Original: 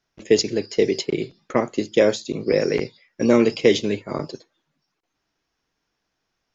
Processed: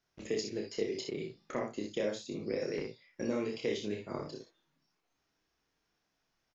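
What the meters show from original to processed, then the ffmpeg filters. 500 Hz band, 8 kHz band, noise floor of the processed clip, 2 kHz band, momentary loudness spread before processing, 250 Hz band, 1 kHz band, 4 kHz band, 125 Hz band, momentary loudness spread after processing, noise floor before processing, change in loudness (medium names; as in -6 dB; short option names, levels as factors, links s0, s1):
-16.0 dB, no reading, -81 dBFS, -15.5 dB, 11 LU, -16.0 dB, -15.0 dB, -15.0 dB, -14.5 dB, 7 LU, -78 dBFS, -16.0 dB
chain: -filter_complex "[0:a]acompressor=threshold=0.0141:ratio=2,asplit=2[s0][s1];[s1]aecho=0:1:29|61|79:0.668|0.531|0.282[s2];[s0][s2]amix=inputs=2:normalize=0,volume=0.473"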